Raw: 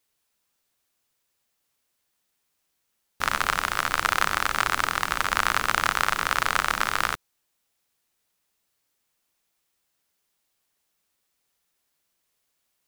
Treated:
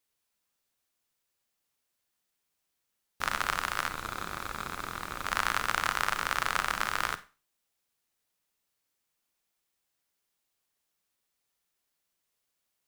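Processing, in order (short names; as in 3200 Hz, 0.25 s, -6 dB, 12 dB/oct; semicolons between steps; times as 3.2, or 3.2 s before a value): 3.88–5.26 tube stage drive 20 dB, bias 0.45; Schroeder reverb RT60 0.32 s, combs from 31 ms, DRR 12.5 dB; gain -6 dB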